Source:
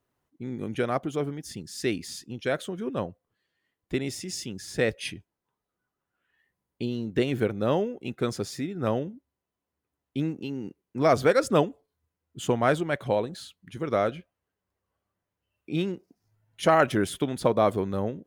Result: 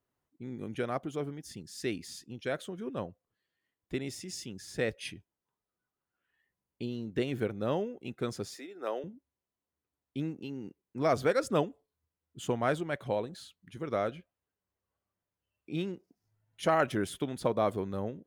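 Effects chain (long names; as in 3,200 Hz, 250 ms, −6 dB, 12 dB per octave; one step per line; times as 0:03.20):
0:08.54–0:09.04: high-pass filter 360 Hz 24 dB per octave
level −6.5 dB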